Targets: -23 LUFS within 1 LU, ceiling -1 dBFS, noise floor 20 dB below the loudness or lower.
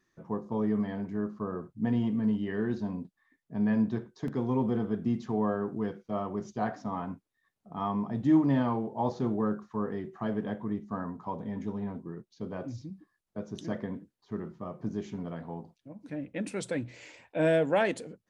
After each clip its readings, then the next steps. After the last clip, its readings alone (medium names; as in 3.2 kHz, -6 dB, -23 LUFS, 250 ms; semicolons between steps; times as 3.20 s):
dropouts 1; longest dropout 2.0 ms; loudness -32.0 LUFS; peak level -14.0 dBFS; loudness target -23.0 LUFS
-> interpolate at 4.28 s, 2 ms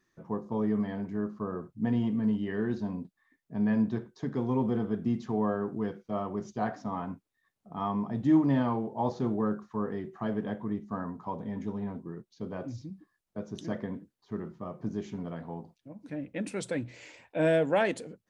dropouts 0; loudness -32.0 LUFS; peak level -14.0 dBFS; loudness target -23.0 LUFS
-> trim +9 dB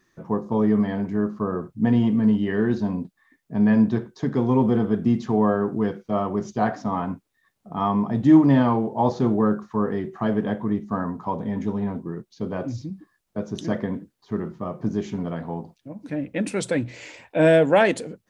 loudness -23.0 LUFS; peak level -5.0 dBFS; noise floor -71 dBFS